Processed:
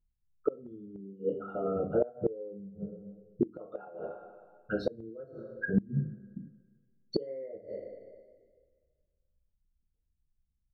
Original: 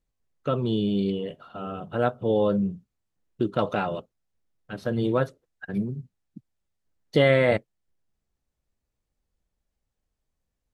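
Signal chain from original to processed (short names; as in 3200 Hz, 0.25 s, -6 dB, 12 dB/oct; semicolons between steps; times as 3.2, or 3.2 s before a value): formant sharpening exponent 3; two-slope reverb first 0.38 s, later 1.7 s, from -21 dB, DRR -2 dB; flipped gate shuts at -15 dBFS, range -26 dB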